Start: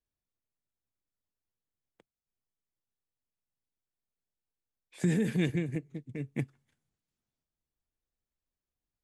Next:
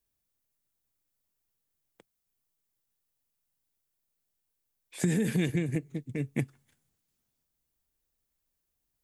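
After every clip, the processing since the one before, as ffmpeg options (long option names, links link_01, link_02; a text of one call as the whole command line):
ffmpeg -i in.wav -af "highshelf=frequency=8200:gain=11.5,acompressor=threshold=-29dB:ratio=4,volume=5dB" out.wav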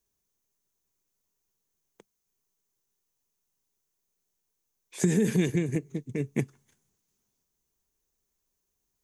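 ffmpeg -i in.wav -af "equalizer=frequency=200:width_type=o:width=0.33:gain=5,equalizer=frequency=400:width_type=o:width=0.33:gain=9,equalizer=frequency=1000:width_type=o:width=0.33:gain=5,equalizer=frequency=6300:width_type=o:width=0.33:gain=10" out.wav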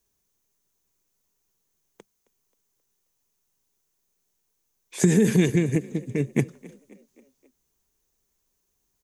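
ffmpeg -i in.wav -filter_complex "[0:a]asplit=5[link_01][link_02][link_03][link_04][link_05];[link_02]adelay=266,afreqshift=31,volume=-22dB[link_06];[link_03]adelay=532,afreqshift=62,volume=-27.8dB[link_07];[link_04]adelay=798,afreqshift=93,volume=-33.7dB[link_08];[link_05]adelay=1064,afreqshift=124,volume=-39.5dB[link_09];[link_01][link_06][link_07][link_08][link_09]amix=inputs=5:normalize=0,volume=5.5dB" out.wav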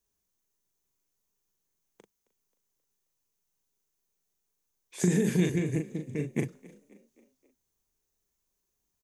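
ffmpeg -i in.wav -filter_complex "[0:a]asplit=2[link_01][link_02];[link_02]adelay=39,volume=-5dB[link_03];[link_01][link_03]amix=inputs=2:normalize=0,volume=-7.5dB" out.wav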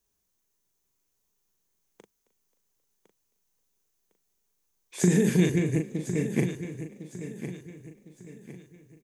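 ffmpeg -i in.wav -af "aecho=1:1:1056|2112|3168|4224:0.282|0.104|0.0386|0.0143,volume=3.5dB" out.wav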